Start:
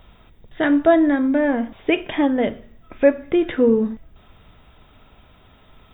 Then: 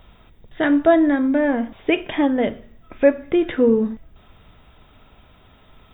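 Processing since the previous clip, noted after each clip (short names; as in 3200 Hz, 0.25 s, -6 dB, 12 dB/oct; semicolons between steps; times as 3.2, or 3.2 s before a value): nothing audible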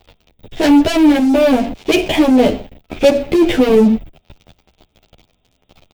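sample leveller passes 5; band shelf 1400 Hz -9 dB 1.2 oct; endless flanger 10.7 ms +1 Hz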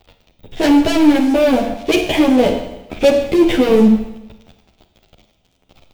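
Schroeder reverb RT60 0.96 s, combs from 33 ms, DRR 7 dB; gain -1.5 dB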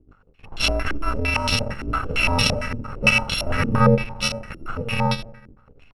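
FFT order left unsorted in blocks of 128 samples; echo 1.186 s -6 dB; stepped low-pass 8.8 Hz 330–3600 Hz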